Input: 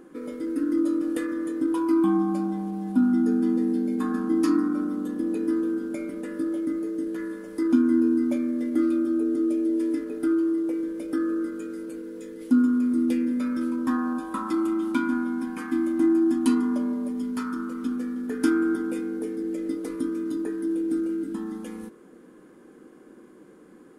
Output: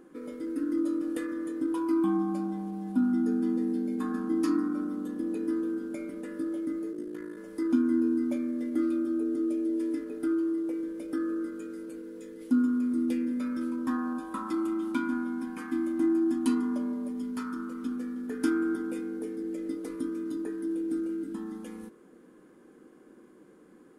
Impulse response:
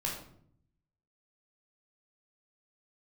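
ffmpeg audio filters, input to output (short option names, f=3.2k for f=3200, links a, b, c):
-filter_complex "[0:a]asettb=1/sr,asplit=3[a][b][c];[a]atrim=end=6.924[d];[b]atrim=start=6.92:end=7.37,asetpts=PTS-STARTPTS,afade=t=in:d=0.004:c=qsin,afade=t=out:st=0.446:d=0.004:c=qsin,aeval=exprs='val(0)*sin(2*PI*27*n/s)':c=same[e];[c]atrim=start=7.366[f];[d][e]acrossfade=d=0.004:c1=hsin:c2=qsin[g];[g][f]acrossfade=d=0.004:c1=qsin:c2=hsin,volume=-5dB"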